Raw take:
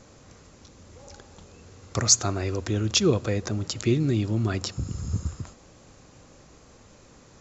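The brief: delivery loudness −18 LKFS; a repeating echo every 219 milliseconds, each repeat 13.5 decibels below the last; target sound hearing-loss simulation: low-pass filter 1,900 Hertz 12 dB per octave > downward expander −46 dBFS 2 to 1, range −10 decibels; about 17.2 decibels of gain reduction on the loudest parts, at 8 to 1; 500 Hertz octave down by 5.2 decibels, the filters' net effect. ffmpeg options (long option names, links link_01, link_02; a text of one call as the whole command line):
ffmpeg -i in.wav -af "equalizer=frequency=500:width_type=o:gain=-7.5,acompressor=threshold=-32dB:ratio=8,lowpass=1900,aecho=1:1:219|438:0.211|0.0444,agate=range=-10dB:threshold=-46dB:ratio=2,volume=20.5dB" out.wav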